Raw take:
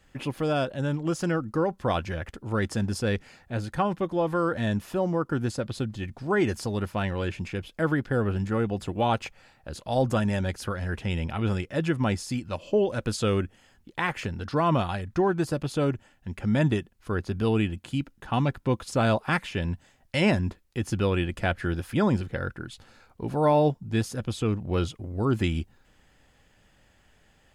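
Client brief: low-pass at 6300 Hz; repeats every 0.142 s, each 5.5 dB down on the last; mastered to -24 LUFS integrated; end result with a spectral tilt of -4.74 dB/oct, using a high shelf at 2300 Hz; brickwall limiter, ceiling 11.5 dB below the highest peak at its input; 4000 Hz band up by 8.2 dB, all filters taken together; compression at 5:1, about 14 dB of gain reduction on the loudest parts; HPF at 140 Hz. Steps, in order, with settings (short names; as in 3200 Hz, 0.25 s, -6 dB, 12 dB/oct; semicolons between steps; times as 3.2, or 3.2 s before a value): HPF 140 Hz; LPF 6300 Hz; high shelf 2300 Hz +5.5 dB; bell 4000 Hz +6.5 dB; compressor 5:1, threshold -34 dBFS; limiter -26.5 dBFS; feedback echo 0.142 s, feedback 53%, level -5.5 dB; gain +14 dB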